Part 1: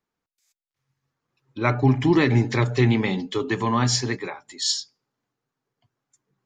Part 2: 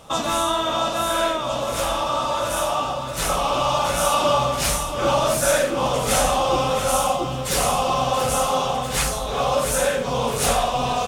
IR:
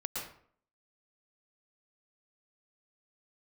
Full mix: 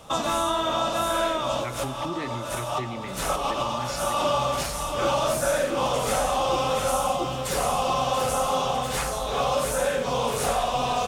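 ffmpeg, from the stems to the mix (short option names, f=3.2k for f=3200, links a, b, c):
-filter_complex "[0:a]volume=-13dB,asplit=2[a][b];[1:a]volume=-1dB[c];[b]apad=whole_len=488197[d];[c][d]sidechaincompress=threshold=-39dB:ratio=5:attack=16:release=201[e];[a][e]amix=inputs=2:normalize=0,acrossover=split=350|1600[f][g][h];[f]acompressor=threshold=-33dB:ratio=4[i];[g]acompressor=threshold=-22dB:ratio=4[j];[h]acompressor=threshold=-31dB:ratio=4[k];[i][j][k]amix=inputs=3:normalize=0"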